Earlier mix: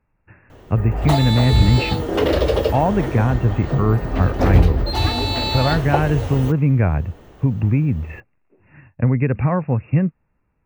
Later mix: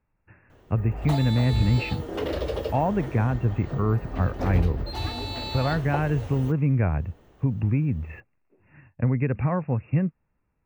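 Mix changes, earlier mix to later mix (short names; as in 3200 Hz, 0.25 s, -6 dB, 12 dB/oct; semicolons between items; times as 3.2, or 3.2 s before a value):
speech -6.0 dB; background -11.0 dB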